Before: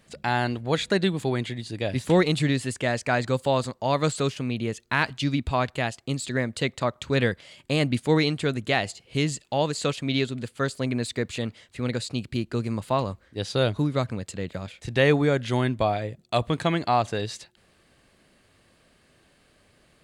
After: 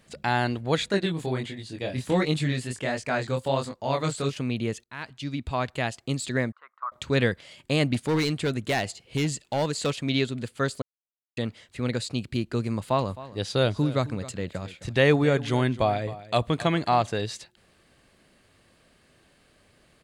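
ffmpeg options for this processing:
ffmpeg -i in.wav -filter_complex "[0:a]asettb=1/sr,asplit=3[link_01][link_02][link_03];[link_01]atrim=end=0.884[link_04];[link_02]atrim=start=0.88:end=4.33,asetpts=PTS-STARTPTS,afade=type=in:duration=0.004:curve=qsin,afade=type=out:start_time=3.446:duration=0.004:curve=qsin,flanger=delay=19.5:depth=5.2:speed=1.4[link_05];[link_03]atrim=start=4.326[link_06];[link_04][link_05]acrossfade=duration=0.004:curve1=hsin:curve2=qsin[link_07];[link_07][link_06]acrossfade=duration=0.004:curve1=qsin:curve2=hsin,asettb=1/sr,asplit=3[link_08][link_09][link_10];[link_08]atrim=end=6.524[link_11];[link_09]atrim=start=6.52:end=6.92,asetpts=PTS-STARTPTS,afade=type=in:duration=0.004:curve=qsin,afade=type=out:start_time=0.396:duration=0.004:curve=qsin,asuperpass=centerf=1200:order=4:qfactor=3.4[link_12];[link_10]atrim=start=6.916[link_13];[link_11][link_12]acrossfade=duration=0.004:curve1=hsin:curve2=qsin[link_14];[link_14][link_13]acrossfade=duration=0.004:curve1=qsin:curve2=hsin,asplit=3[link_15][link_16][link_17];[link_15]afade=type=out:start_time=7.93:duration=0.02[link_18];[link_16]volume=20dB,asoftclip=hard,volume=-20dB,afade=type=in:start_time=7.93:duration=0.02,afade=type=out:start_time=10.08:duration=0.02[link_19];[link_17]afade=type=in:start_time=10.08:duration=0.02[link_20];[link_18][link_19][link_20]amix=inputs=3:normalize=0,asplit=3[link_21][link_22][link_23];[link_21]afade=type=out:start_time=13.05:duration=0.02[link_24];[link_22]aecho=1:1:263:0.15,afade=type=in:start_time=13.05:duration=0.02,afade=type=out:start_time=17.02:duration=0.02[link_25];[link_23]afade=type=in:start_time=17.02:duration=0.02[link_26];[link_24][link_25][link_26]amix=inputs=3:normalize=0,asplit=4[link_27][link_28][link_29][link_30];[link_27]atrim=end=4.84,asetpts=PTS-STARTPTS,afade=type=out:start_time=4.836:duration=0.004:curve=hsin:silence=0.0749894[link_31];[link_28]atrim=start=4.84:end=10.82,asetpts=PTS-STARTPTS,afade=type=in:duration=1.13:silence=0.0749894,afade=type=out:start_time=5.976:duration=0.004:curve=hsin[link_32];[link_29]atrim=start=10.82:end=11.37,asetpts=PTS-STARTPTS,volume=0[link_33];[link_30]atrim=start=11.37,asetpts=PTS-STARTPTS,afade=type=in:duration=0.004:curve=hsin[link_34];[link_31][link_32][link_33][link_34]concat=n=4:v=0:a=1" out.wav

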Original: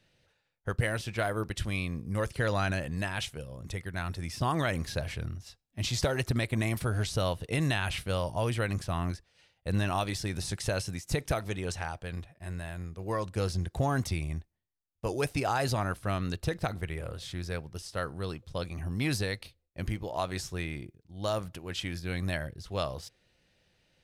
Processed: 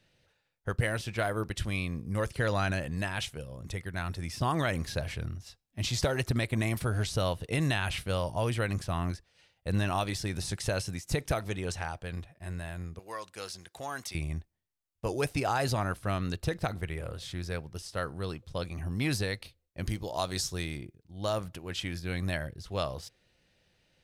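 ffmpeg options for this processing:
ffmpeg -i in.wav -filter_complex "[0:a]asettb=1/sr,asplit=3[link_01][link_02][link_03];[link_01]atrim=end=12.994[link_04];[link_02]atrim=start=12.99:end=14.15,asetpts=PTS-STARTPTS,afade=type=in:duration=0.004:curve=qsin,afade=type=out:start_time=1.156:duration=0.004:curve=qsin,highpass=frequency=1500:poles=1[link_05];[link_03]atrim=start=14.146[link_06];[link_04][link_05]acrossfade=duration=0.004:curve1=hsin:curve2=qsin[link_07];[link_07][link_06]acrossfade=duration=0.004:curve1=qsin:curve2=hsin,asettb=1/sr,asplit=3[link_08][link_09][link_10];[link_08]atrim=end=19.874[link_11];[link_09]atrim=start=19.87:end=20.77,asetpts=PTS-STARTPTS,afade=type=in:duration=0.004:curve=qsin,afade=type=out:start_time=0.896:duration=0.004:curve=qsin,highshelf=frequency=3200:width_type=q:width=1.5:gain=6[link_12];[link_10]atrim=start=20.766[link_13];[link_11][link_12]acrossfade=duration=0.004:curve1=hsin:curve2=qsin[link_14];[link_14][link_13]acrossfade=duration=0.004:curve1=qsin:curve2=hsin" out.wav

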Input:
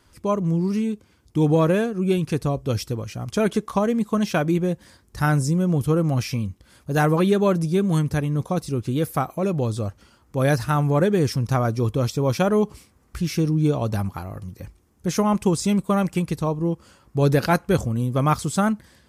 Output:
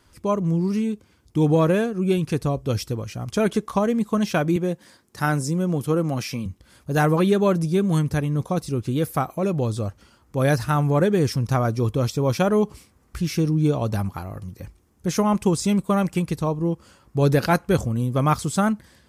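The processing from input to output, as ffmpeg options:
ffmpeg -i in.wav -filter_complex "[0:a]asettb=1/sr,asplit=3[link_01][link_02][link_03];[link_01]atrim=end=4.564[link_04];[link_02]atrim=start=4.56:end=6.46,asetpts=PTS-STARTPTS,afade=type=in:duration=0.004:curve=qsin,afade=type=out:start_time=1.896:duration=0.004:curve=qsin,highpass=170[link_05];[link_03]atrim=start=6.456[link_06];[link_04][link_05]acrossfade=duration=0.004:curve1=hsin:curve2=qsin[link_07];[link_07][link_06]acrossfade=duration=0.004:curve1=qsin:curve2=hsin" out.wav

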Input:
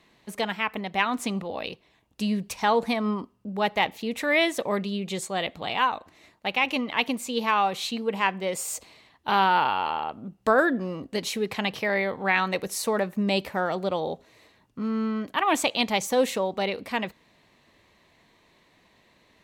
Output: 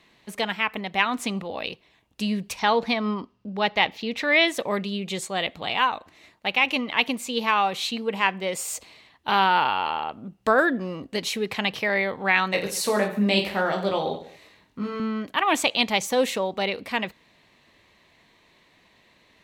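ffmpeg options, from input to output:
ffmpeg -i in.wav -filter_complex "[0:a]asettb=1/sr,asplit=3[link_01][link_02][link_03];[link_01]atrim=end=2.594[link_04];[link_02]atrim=start=2.59:end=4.48,asetpts=PTS-STARTPTS,afade=type=in:duration=0.004:curve=qsin,afade=type=out:start_time=1.886:duration=0.004:curve=qsin,highshelf=frequency=6700:width_type=q:width=1.5:gain=-9[link_05];[link_03]atrim=start=4.476[link_06];[link_04][link_05]acrossfade=duration=0.004:curve1=hsin:curve2=qsin[link_07];[link_07][link_06]acrossfade=duration=0.004:curve1=qsin:curve2=hsin,asettb=1/sr,asplit=3[link_08][link_09][link_10];[link_08]atrim=end=12.514[link_11];[link_09]atrim=start=12.51:end=15,asetpts=PTS-STARTPTS,afade=type=in:duration=0.004:curve=qsin,afade=type=out:start_time=2.486:duration=0.004:curve=qsin,aecho=1:1:20|48|87.2|142.1|218.9:0.631|0.398|0.251|0.158|0.1,atrim=end_sample=109809[link_12];[link_10]atrim=start=14.996[link_13];[link_11][link_12]acrossfade=duration=0.004:curve1=hsin:curve2=qsin[link_14];[link_14][link_13]acrossfade=duration=0.004:curve1=qsin:curve2=hsin,equalizer=frequency=2800:width=0.72:gain=4" out.wav

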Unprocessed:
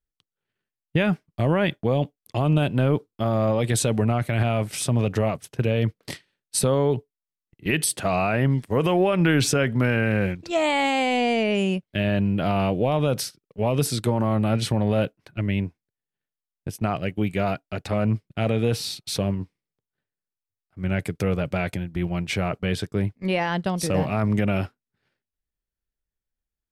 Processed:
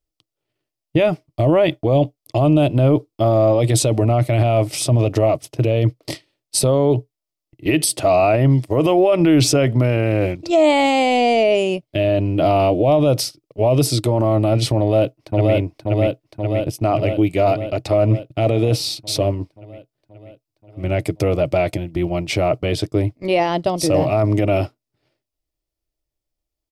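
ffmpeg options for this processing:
ffmpeg -i in.wav -filter_complex "[0:a]asplit=2[link_01][link_02];[link_02]afade=type=in:start_time=14.79:duration=0.01,afade=type=out:start_time=15.54:duration=0.01,aecho=0:1:530|1060|1590|2120|2650|3180|3710|4240|4770|5300|5830|6360:0.794328|0.55603|0.389221|0.272455|0.190718|0.133503|0.0934519|0.0654163|0.0457914|0.032054|0.0224378|0.0157065[link_03];[link_01][link_03]amix=inputs=2:normalize=0,equalizer=frequency=125:width_type=o:width=0.33:gain=6,equalizer=frequency=200:width_type=o:width=0.33:gain=-12,equalizer=frequency=315:width_type=o:width=0.33:gain=11,equalizer=frequency=630:width_type=o:width=0.33:gain=10,equalizer=frequency=1600:width_type=o:width=0.33:gain=-12,equalizer=frequency=5000:width_type=o:width=0.33:gain=5,alimiter=limit=-11.5dB:level=0:latency=1:release=20,volume=4.5dB" out.wav

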